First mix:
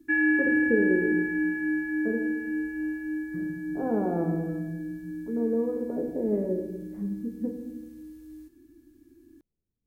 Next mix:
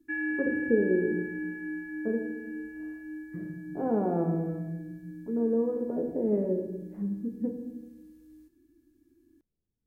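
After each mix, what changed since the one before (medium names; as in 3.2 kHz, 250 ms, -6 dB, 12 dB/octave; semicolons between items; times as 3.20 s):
background -8.5 dB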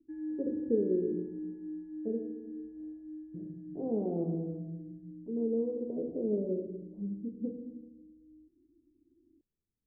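master: add four-pole ladder low-pass 630 Hz, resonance 25%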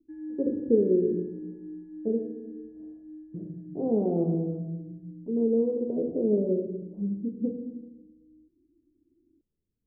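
speech +7.0 dB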